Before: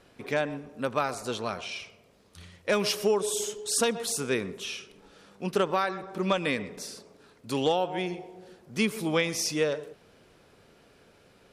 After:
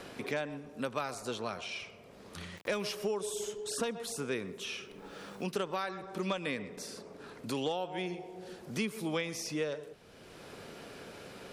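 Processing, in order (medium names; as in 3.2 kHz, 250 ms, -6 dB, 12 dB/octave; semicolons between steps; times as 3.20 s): 2.57–3.00 s: small samples zeroed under -51.5 dBFS; 4.44–5.51 s: added noise white -77 dBFS; three bands compressed up and down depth 70%; trim -7 dB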